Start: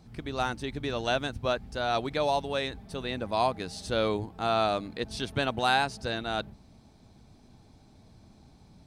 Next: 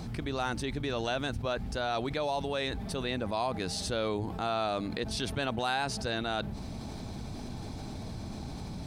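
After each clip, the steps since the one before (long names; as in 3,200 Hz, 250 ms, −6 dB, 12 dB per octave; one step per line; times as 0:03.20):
envelope flattener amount 70%
level −7 dB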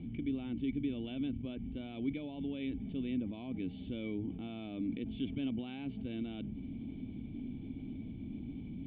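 formant resonators in series i
level +4.5 dB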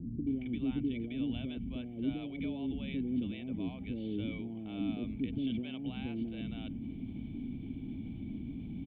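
multiband delay without the direct sound lows, highs 270 ms, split 510 Hz
level +2.5 dB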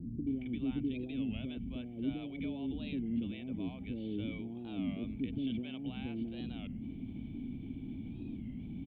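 wow of a warped record 33 1/3 rpm, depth 160 cents
level −1.5 dB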